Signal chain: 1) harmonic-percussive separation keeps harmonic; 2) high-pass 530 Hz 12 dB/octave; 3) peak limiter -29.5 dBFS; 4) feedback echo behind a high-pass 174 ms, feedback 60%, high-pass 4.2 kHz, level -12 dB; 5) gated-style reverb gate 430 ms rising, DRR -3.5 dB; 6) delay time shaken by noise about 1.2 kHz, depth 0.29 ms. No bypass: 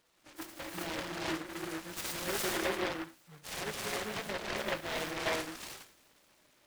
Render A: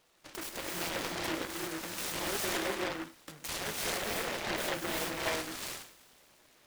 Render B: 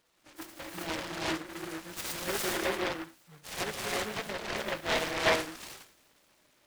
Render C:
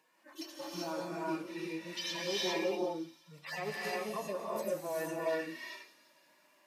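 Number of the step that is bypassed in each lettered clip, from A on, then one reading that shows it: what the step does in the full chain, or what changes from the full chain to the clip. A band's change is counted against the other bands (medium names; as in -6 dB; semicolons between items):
1, 8 kHz band +3.0 dB; 3, crest factor change +3.5 dB; 6, 8 kHz band -4.5 dB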